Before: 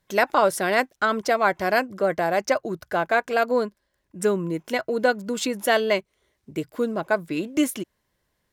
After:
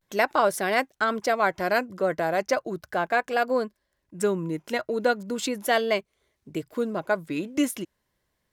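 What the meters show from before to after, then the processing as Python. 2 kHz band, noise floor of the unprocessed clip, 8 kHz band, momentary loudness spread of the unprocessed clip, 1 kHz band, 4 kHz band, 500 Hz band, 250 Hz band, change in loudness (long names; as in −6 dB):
−2.5 dB, −74 dBFS, −2.5 dB, 7 LU, −2.0 dB, −2.5 dB, −2.5 dB, −2.5 dB, −2.5 dB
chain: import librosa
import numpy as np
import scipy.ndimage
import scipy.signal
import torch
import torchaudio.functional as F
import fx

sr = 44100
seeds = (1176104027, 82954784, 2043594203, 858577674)

y = fx.vibrato(x, sr, rate_hz=0.37, depth_cents=56.0)
y = F.gain(torch.from_numpy(y), -2.5).numpy()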